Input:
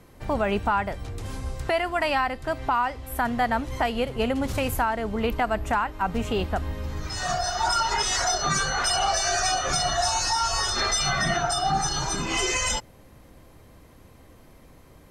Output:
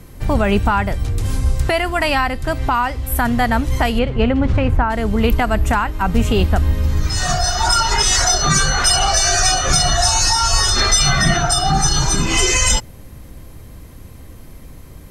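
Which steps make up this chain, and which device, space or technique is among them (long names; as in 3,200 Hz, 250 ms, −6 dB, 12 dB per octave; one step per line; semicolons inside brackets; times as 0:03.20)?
0:03.98–0:04.89: low-pass filter 3,500 Hz → 1,600 Hz 12 dB per octave
smiley-face EQ (low-shelf EQ 160 Hz +9 dB; parametric band 740 Hz −3.5 dB 1.6 octaves; high-shelf EQ 7,300 Hz +7.5 dB)
level +8 dB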